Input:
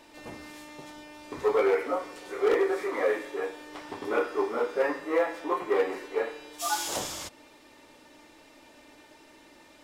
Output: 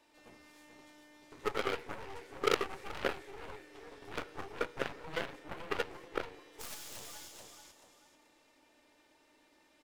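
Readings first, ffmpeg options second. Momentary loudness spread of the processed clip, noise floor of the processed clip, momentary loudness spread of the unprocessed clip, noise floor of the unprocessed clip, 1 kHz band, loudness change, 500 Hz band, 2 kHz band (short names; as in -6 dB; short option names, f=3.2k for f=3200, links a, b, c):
22 LU, -68 dBFS, 19 LU, -55 dBFS, -9.0 dB, -10.5 dB, -13.0 dB, -6.5 dB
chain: -filter_complex "[0:a]lowshelf=f=330:g=-4,aecho=1:1:434|868|1302:0.501|0.13|0.0339,acrossover=split=670|1500[a][b][c];[b]acompressor=threshold=-51dB:ratio=6[d];[a][d][c]amix=inputs=3:normalize=0,aeval=exprs='0.178*(cos(1*acos(clip(val(0)/0.178,-1,1)))-cos(1*PI/2))+0.0708*(cos(3*acos(clip(val(0)/0.178,-1,1)))-cos(3*PI/2))+0.00224*(cos(5*acos(clip(val(0)/0.178,-1,1)))-cos(5*PI/2))+0.00355*(cos(8*acos(clip(val(0)/0.178,-1,1)))-cos(8*PI/2))':c=same,volume=4.5dB"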